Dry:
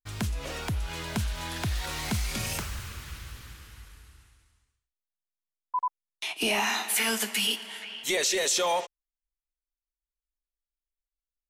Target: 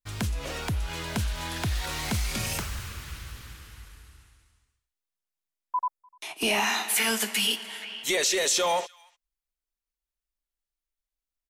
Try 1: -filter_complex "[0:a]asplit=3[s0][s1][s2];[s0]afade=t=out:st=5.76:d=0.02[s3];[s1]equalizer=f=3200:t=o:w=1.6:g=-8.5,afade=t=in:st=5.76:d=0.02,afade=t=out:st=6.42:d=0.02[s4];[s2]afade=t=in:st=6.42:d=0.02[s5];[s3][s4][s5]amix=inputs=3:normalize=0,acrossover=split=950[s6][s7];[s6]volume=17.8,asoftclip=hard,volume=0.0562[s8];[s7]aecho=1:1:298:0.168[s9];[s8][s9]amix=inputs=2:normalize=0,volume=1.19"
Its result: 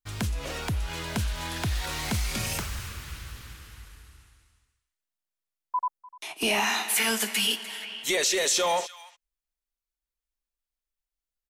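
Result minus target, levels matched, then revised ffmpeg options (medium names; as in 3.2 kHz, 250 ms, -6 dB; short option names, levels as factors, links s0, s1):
echo-to-direct +8.5 dB
-filter_complex "[0:a]asplit=3[s0][s1][s2];[s0]afade=t=out:st=5.76:d=0.02[s3];[s1]equalizer=f=3200:t=o:w=1.6:g=-8.5,afade=t=in:st=5.76:d=0.02,afade=t=out:st=6.42:d=0.02[s4];[s2]afade=t=in:st=6.42:d=0.02[s5];[s3][s4][s5]amix=inputs=3:normalize=0,acrossover=split=950[s6][s7];[s6]volume=17.8,asoftclip=hard,volume=0.0562[s8];[s7]aecho=1:1:298:0.0631[s9];[s8][s9]amix=inputs=2:normalize=0,volume=1.19"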